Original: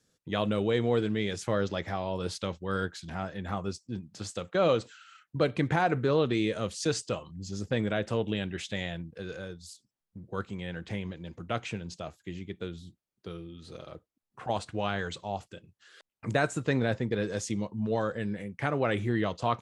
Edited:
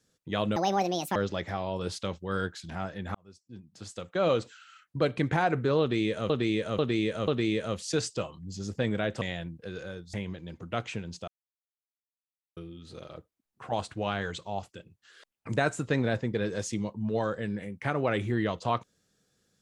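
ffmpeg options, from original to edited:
ffmpeg -i in.wav -filter_complex "[0:a]asplit=11[link_01][link_02][link_03][link_04][link_05][link_06][link_07][link_08][link_09][link_10][link_11];[link_01]atrim=end=0.564[link_12];[link_02]atrim=start=0.56:end=1.55,asetpts=PTS-STARTPTS,asetrate=73206,aresample=44100[link_13];[link_03]atrim=start=1.546:end=3.54,asetpts=PTS-STARTPTS,afade=type=out:start_time=1.99:duration=0.004:curve=hsin[link_14];[link_04]atrim=start=3.54:end=6.692,asetpts=PTS-STARTPTS,afade=type=in:duration=1.25[link_15];[link_05]atrim=start=6.198:end=6.692[link_16];[link_06]atrim=start=6.198:end=6.692[link_17];[link_07]atrim=start=6.198:end=8.142[link_18];[link_08]atrim=start=8.748:end=9.672[link_19];[link_09]atrim=start=10.908:end=12.05,asetpts=PTS-STARTPTS,afade=type=out:start_time=1.138:duration=0.004:curve=hsin[link_20];[link_10]atrim=start=12.05:end=13.34,asetpts=PTS-STARTPTS,volume=0[link_21];[link_11]atrim=start=13.34,asetpts=PTS-STARTPTS,afade=type=in:duration=0.004:curve=hsin[link_22];[link_12][link_13]acrossfade=duration=0.004:curve1=hsin:curve2=hsin[link_23];[link_14][link_15]concat=n=2:v=0:a=1[link_24];[link_23][link_24]acrossfade=duration=0.004:curve1=hsin:curve2=hsin[link_25];[link_25][link_16]acrossfade=duration=0.004:curve1=hsin:curve2=hsin[link_26];[link_26][link_17]acrossfade=duration=0.004:curve1=hsin:curve2=hsin[link_27];[link_27][link_18]acrossfade=duration=0.004:curve1=hsin:curve2=hsin[link_28];[link_28][link_19]acrossfade=duration=0.004:curve1=hsin:curve2=hsin[link_29];[link_20][link_21][link_22]concat=n=3:v=0:a=1[link_30];[link_29][link_30]acrossfade=duration=0.004:curve1=hsin:curve2=hsin" out.wav

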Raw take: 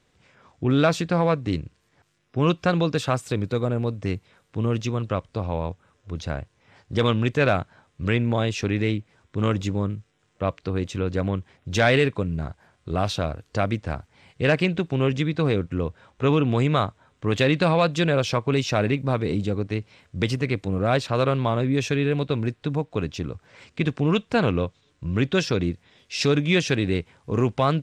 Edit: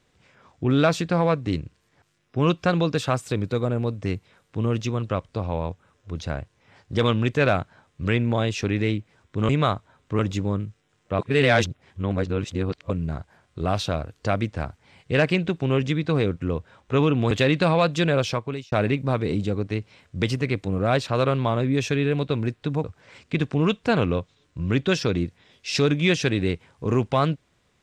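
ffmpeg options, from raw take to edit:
ffmpeg -i in.wav -filter_complex "[0:a]asplit=8[link_01][link_02][link_03][link_04][link_05][link_06][link_07][link_08];[link_01]atrim=end=9.492[link_09];[link_02]atrim=start=16.608:end=17.312[link_10];[link_03]atrim=start=9.488:end=10.492[link_11];[link_04]atrim=start=10.488:end=12.202,asetpts=PTS-STARTPTS,areverse[link_12];[link_05]atrim=start=12.198:end=16.612[link_13];[link_06]atrim=start=17.308:end=18.72,asetpts=PTS-STARTPTS,afade=type=out:start_time=0.922:duration=0.49[link_14];[link_07]atrim=start=18.72:end=22.842,asetpts=PTS-STARTPTS,afade=type=in:duration=0.004:curve=hsin[link_15];[link_08]atrim=start=23.298[link_16];[link_09][link_10]acrossfade=duration=0.004:curve1=hsin:curve2=hsin[link_17];[link_17][link_11]acrossfade=duration=0.004:curve1=hsin:curve2=hsin[link_18];[link_18][link_12]acrossfade=duration=0.004:curve1=hsin:curve2=hsin[link_19];[link_19][link_13]acrossfade=duration=0.004:curve1=hsin:curve2=hsin[link_20];[link_14][link_15]concat=n=2:v=0:a=1[link_21];[link_20][link_21]acrossfade=duration=0.004:curve1=hsin:curve2=hsin[link_22];[link_22][link_16]acrossfade=duration=0.004:curve1=hsin:curve2=hsin" out.wav

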